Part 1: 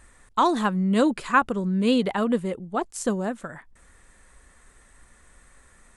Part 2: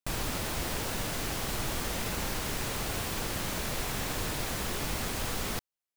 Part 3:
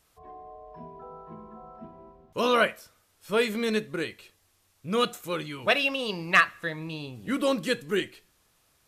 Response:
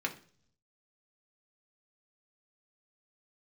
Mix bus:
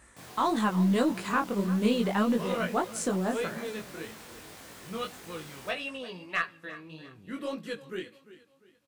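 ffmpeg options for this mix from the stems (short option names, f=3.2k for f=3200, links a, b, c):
-filter_complex "[0:a]alimiter=limit=-16.5dB:level=0:latency=1:release=281,volume=2.5dB,asplit=3[a][b][c];[b]volume=-15.5dB[d];[1:a]highpass=120,flanger=delay=18.5:depth=6.2:speed=2.5,adelay=100,volume=-7.5dB[e];[2:a]highshelf=f=4.7k:g=-5,volume=-7dB,asplit=2[f][g];[g]volume=-16.5dB[h];[c]apad=whole_len=391397[i];[f][i]sidechaincompress=threshold=-24dB:ratio=8:attack=16:release=217[j];[d][h]amix=inputs=2:normalize=0,aecho=0:1:347|694|1041|1388|1735:1|0.36|0.13|0.0467|0.0168[k];[a][e][j][k]amix=inputs=4:normalize=0,highpass=78,flanger=delay=17.5:depth=4.7:speed=1.7,aeval=exprs='0.211*(cos(1*acos(clip(val(0)/0.211,-1,1)))-cos(1*PI/2))+0.00266*(cos(6*acos(clip(val(0)/0.211,-1,1)))-cos(6*PI/2))':c=same"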